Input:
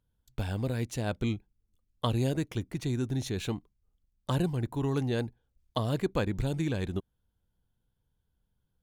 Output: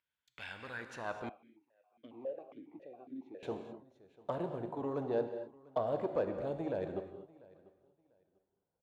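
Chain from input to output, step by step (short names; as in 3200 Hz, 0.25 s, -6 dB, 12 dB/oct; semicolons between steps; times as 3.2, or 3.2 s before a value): soft clip -26 dBFS, distortion -13 dB; band-pass sweep 2200 Hz -> 630 Hz, 0.43–1.54; feedback echo 0.694 s, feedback 22%, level -22.5 dB; non-linear reverb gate 0.28 s flat, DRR 6.5 dB; 1.29–3.43 vowel sequencer 7.3 Hz; gain +6.5 dB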